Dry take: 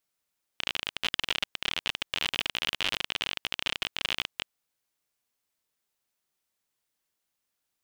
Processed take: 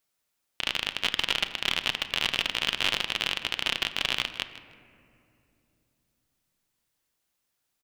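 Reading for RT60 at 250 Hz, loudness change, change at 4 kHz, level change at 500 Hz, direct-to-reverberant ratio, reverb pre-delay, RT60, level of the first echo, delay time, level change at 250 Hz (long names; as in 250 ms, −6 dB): 3.9 s, +3.5 dB, +3.5 dB, +3.5 dB, 9.5 dB, 8 ms, 2.8 s, −16.5 dB, 157 ms, +3.5 dB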